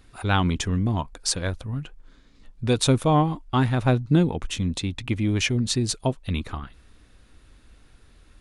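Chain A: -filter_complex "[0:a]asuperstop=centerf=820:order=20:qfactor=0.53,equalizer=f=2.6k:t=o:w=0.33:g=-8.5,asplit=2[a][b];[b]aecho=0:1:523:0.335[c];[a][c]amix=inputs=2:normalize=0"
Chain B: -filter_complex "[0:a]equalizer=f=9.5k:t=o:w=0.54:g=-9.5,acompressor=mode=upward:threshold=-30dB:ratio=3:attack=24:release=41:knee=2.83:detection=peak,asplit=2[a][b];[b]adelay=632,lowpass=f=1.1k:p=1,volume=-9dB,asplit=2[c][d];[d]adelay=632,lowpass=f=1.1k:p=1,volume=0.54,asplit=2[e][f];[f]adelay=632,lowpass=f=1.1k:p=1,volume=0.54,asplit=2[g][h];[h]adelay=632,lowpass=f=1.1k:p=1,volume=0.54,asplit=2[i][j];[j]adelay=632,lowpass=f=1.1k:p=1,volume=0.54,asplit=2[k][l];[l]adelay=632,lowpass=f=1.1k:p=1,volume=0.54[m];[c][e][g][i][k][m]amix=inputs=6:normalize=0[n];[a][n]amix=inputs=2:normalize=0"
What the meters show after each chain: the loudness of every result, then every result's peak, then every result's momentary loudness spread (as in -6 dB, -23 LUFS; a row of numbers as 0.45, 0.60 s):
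-25.0, -24.0 LUFS; -7.0, -6.0 dBFS; 16, 17 LU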